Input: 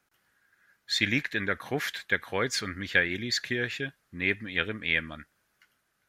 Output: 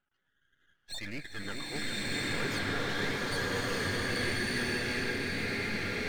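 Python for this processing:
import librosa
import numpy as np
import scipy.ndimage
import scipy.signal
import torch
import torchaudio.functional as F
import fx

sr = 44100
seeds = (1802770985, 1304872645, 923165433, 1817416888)

y = fx.tube_stage(x, sr, drive_db=30.0, bias=0.5)
y = fx.echo_alternate(y, sr, ms=415, hz=1900.0, feedback_pct=71, wet_db=-4.0)
y = fx.spec_topn(y, sr, count=32)
y = np.maximum(y, 0.0)
y = fx.rev_bloom(y, sr, seeds[0], attack_ms=1280, drr_db=-9.0)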